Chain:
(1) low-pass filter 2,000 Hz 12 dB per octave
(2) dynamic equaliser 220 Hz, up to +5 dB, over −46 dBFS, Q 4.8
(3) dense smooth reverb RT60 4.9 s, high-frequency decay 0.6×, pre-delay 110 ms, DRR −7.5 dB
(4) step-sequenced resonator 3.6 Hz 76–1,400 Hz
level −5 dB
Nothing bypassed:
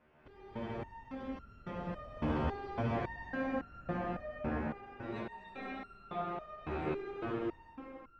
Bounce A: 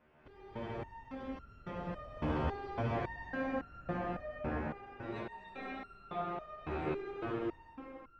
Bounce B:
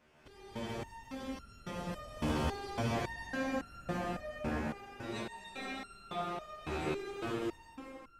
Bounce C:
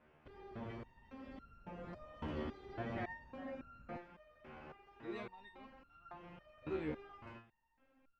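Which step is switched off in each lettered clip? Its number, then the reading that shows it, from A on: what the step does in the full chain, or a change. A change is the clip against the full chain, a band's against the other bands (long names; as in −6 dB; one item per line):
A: 2, 250 Hz band −1.5 dB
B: 1, 4 kHz band +10.0 dB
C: 3, 4 kHz band +3.0 dB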